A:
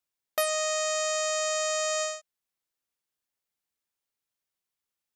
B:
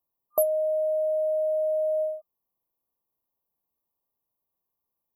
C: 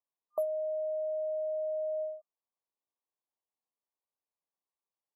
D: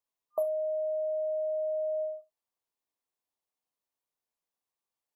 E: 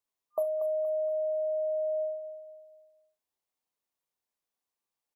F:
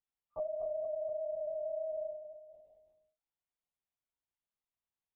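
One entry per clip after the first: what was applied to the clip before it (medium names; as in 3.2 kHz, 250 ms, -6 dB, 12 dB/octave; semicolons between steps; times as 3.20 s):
FFT band-reject 1.2–11 kHz; trim +6.5 dB
band-pass filter 910 Hz, Q 0.55; trim -7.5 dB
gated-style reverb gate 100 ms falling, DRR 8 dB; trim +2 dB
feedback delay 236 ms, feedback 41%, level -10.5 dB
LPC vocoder at 8 kHz whisper; trim -7.5 dB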